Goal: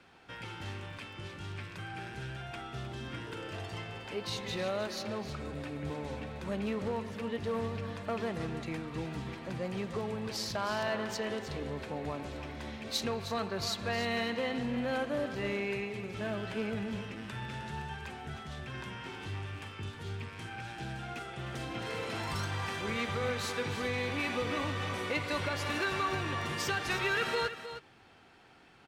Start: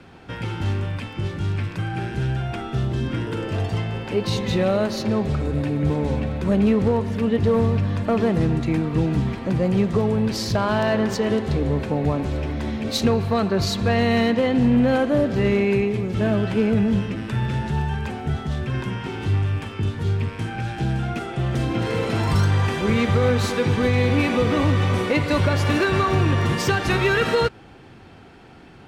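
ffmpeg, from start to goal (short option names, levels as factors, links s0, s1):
-filter_complex "[0:a]lowshelf=f=500:g=-12,asplit=2[s0][s1];[s1]aecho=0:1:311:0.282[s2];[s0][s2]amix=inputs=2:normalize=0,volume=0.398"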